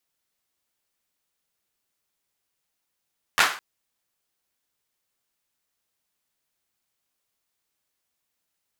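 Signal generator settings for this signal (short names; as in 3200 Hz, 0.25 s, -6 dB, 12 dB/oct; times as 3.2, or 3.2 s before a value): hand clap length 0.21 s, bursts 3, apart 11 ms, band 1400 Hz, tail 0.40 s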